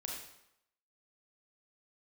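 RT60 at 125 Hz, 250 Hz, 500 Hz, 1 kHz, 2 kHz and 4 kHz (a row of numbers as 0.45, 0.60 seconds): 0.70, 0.75, 0.80, 0.85, 0.75, 0.70 seconds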